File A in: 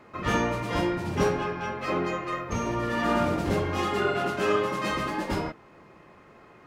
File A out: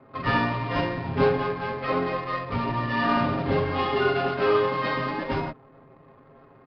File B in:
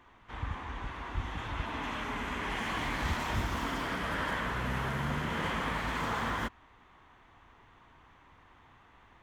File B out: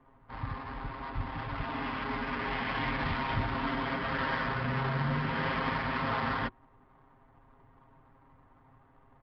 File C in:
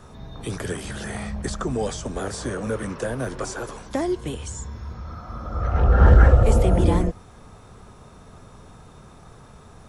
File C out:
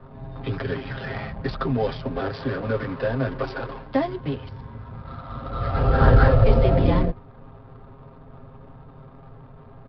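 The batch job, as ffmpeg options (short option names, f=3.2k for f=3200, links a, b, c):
-filter_complex "[0:a]bandreject=f=360:w=12,aecho=1:1:7.5:0.83,acrossover=split=100[a][b];[b]adynamicsmooth=sensitivity=7.5:basefreq=840[c];[a][c]amix=inputs=2:normalize=0,aresample=11025,aresample=44100"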